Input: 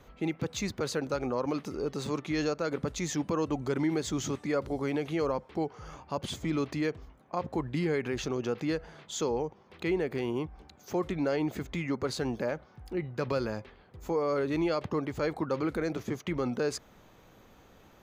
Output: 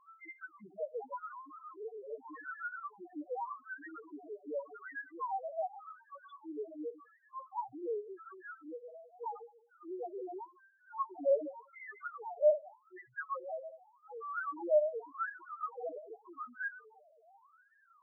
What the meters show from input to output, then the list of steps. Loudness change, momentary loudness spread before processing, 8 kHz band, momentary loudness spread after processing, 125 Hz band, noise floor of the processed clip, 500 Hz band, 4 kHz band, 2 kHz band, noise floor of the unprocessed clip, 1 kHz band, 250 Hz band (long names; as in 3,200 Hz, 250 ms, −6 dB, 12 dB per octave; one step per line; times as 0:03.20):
−7.0 dB, 7 LU, below −35 dB, 19 LU, below −40 dB, −68 dBFS, −5.0 dB, below −35 dB, −4.5 dB, −58 dBFS, −2.5 dB, −19.0 dB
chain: feedback delay that plays each chunk backwards 100 ms, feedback 47%, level −11 dB
LFO wah 0.86 Hz 630–1,700 Hz, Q 7.9
spectral peaks only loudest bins 1
level +16 dB